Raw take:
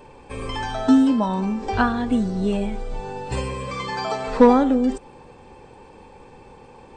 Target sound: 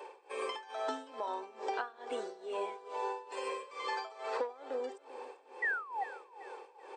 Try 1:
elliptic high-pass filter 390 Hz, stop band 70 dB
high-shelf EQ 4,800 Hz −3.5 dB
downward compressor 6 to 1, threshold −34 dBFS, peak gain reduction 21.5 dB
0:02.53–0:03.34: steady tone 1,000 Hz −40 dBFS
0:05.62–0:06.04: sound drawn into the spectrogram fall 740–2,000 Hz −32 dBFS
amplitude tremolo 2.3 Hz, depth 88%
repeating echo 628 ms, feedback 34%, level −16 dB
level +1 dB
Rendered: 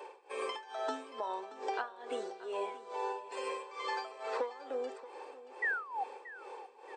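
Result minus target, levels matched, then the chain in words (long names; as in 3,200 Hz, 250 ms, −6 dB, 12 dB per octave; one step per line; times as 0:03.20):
echo 237 ms late
elliptic high-pass filter 390 Hz, stop band 70 dB
high-shelf EQ 4,800 Hz −3.5 dB
downward compressor 6 to 1, threshold −34 dBFS, peak gain reduction 21.5 dB
0:02.53–0:03.34: steady tone 1,000 Hz −40 dBFS
0:05.62–0:06.04: sound drawn into the spectrogram fall 740–2,000 Hz −32 dBFS
amplitude tremolo 2.3 Hz, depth 88%
repeating echo 391 ms, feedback 34%, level −16 dB
level +1 dB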